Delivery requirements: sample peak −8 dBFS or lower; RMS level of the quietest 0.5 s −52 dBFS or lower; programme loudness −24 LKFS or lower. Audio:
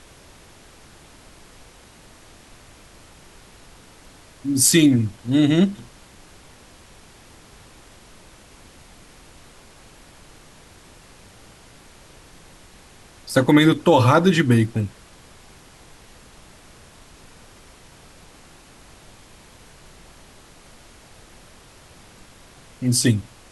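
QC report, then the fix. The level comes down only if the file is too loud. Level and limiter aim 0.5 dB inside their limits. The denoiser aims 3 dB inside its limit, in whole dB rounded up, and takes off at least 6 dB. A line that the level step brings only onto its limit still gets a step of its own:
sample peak −4.0 dBFS: out of spec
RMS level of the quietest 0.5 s −48 dBFS: out of spec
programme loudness −18.0 LKFS: out of spec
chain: level −6.5 dB

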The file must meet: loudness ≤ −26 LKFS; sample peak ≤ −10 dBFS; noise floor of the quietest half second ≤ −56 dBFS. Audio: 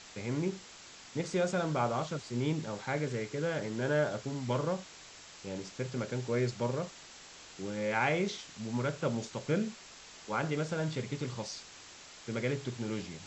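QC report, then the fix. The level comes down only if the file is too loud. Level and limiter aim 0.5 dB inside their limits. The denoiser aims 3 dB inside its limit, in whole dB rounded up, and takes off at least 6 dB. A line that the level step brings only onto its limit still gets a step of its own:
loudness −34.5 LKFS: in spec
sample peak −16.0 dBFS: in spec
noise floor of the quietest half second −52 dBFS: out of spec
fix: broadband denoise 7 dB, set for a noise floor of −52 dBFS

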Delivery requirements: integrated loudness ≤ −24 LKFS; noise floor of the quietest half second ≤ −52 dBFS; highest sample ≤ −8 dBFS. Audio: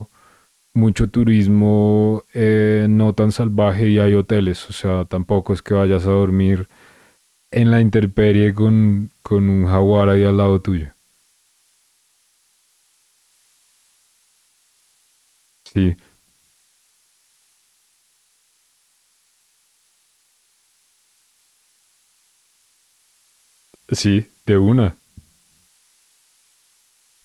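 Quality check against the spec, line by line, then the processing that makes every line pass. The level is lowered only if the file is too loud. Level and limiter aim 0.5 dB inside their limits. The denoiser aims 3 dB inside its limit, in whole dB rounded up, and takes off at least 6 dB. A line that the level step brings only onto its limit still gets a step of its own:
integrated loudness −16.5 LKFS: out of spec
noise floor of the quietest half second −62 dBFS: in spec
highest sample −3.5 dBFS: out of spec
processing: level −8 dB

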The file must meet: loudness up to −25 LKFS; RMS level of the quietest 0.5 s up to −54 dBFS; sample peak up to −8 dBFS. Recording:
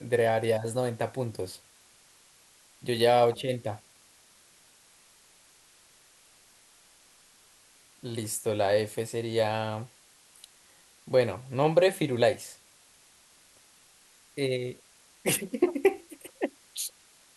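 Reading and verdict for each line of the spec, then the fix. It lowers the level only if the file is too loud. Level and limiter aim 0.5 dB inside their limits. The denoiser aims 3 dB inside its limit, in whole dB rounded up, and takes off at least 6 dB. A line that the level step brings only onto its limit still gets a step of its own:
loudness −28.5 LKFS: in spec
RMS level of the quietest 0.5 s −59 dBFS: in spec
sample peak −10.0 dBFS: in spec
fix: no processing needed

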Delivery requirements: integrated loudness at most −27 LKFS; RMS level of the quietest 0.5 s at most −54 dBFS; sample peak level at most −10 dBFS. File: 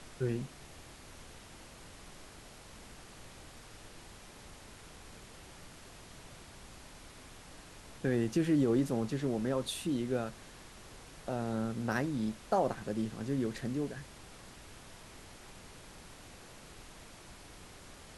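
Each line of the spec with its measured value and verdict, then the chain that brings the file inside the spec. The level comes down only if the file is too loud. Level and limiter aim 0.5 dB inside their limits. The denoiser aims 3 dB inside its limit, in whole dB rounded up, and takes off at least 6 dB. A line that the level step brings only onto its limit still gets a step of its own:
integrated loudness −34.0 LKFS: in spec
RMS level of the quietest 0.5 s −52 dBFS: out of spec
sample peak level −17.5 dBFS: in spec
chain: broadband denoise 6 dB, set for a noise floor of −52 dBFS

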